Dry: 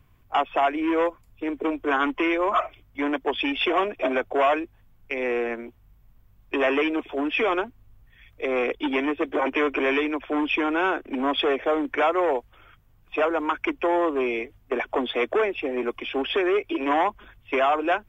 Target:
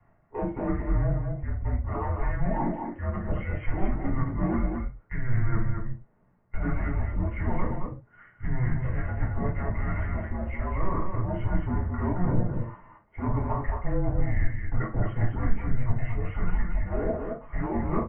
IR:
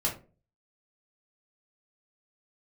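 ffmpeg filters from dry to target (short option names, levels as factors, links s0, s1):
-filter_complex "[0:a]areverse,acompressor=threshold=0.02:ratio=16,areverse,highpass=f=240:t=q:w=0.5412,highpass=f=240:t=q:w=1.307,lowpass=f=2200:t=q:w=0.5176,lowpass=f=2200:t=q:w=0.7071,lowpass=f=2200:t=q:w=1.932,afreqshift=-370,equalizer=f=70:t=o:w=2.4:g=-5,acrossover=split=270|1000[s0][s1][s2];[s0]acontrast=34[s3];[s3][s1][s2]amix=inputs=3:normalize=0,aecho=1:1:43.73|218.7:0.316|0.562[s4];[1:a]atrim=start_sample=2205,atrim=end_sample=6174[s5];[s4][s5]afir=irnorm=-1:irlink=0,volume=0.841"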